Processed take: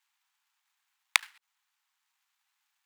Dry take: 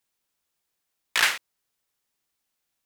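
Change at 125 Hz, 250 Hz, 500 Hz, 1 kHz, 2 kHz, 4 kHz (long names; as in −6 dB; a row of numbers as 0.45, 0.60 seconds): can't be measured, below −40 dB, below −25 dB, −6.5 dB, −6.5 dB, −6.5 dB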